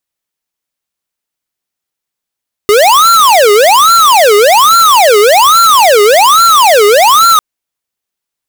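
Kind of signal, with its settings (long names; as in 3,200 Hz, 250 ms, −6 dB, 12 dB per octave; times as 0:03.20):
siren wail 408–1,370 Hz 1.2 per second square −5 dBFS 4.70 s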